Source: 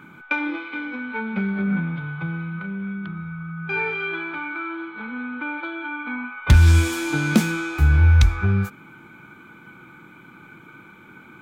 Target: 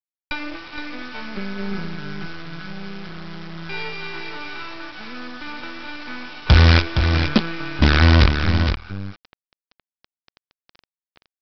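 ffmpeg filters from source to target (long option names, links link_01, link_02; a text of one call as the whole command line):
ffmpeg -i in.wav -af "aresample=11025,acrusher=bits=3:dc=4:mix=0:aa=0.000001,aresample=44100,aecho=1:1:466:0.447,volume=-1dB" out.wav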